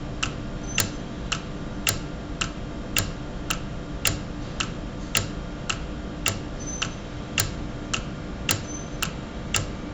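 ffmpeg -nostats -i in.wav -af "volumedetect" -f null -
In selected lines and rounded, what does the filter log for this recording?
mean_volume: -29.6 dB
max_volume: -7.6 dB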